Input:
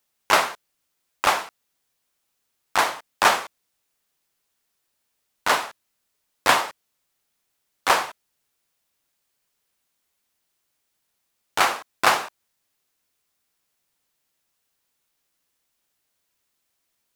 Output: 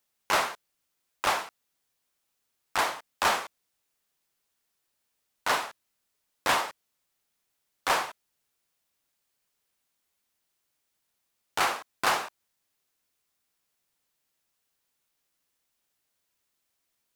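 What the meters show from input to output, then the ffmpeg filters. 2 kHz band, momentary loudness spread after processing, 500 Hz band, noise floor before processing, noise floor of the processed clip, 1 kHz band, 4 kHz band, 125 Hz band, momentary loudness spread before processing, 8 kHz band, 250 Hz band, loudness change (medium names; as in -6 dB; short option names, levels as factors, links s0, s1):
-6.5 dB, 12 LU, -6.5 dB, -76 dBFS, -79 dBFS, -6.5 dB, -6.0 dB, -4.5 dB, 14 LU, -6.0 dB, -6.0 dB, -6.5 dB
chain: -af "asoftclip=type=tanh:threshold=0.2,volume=0.668"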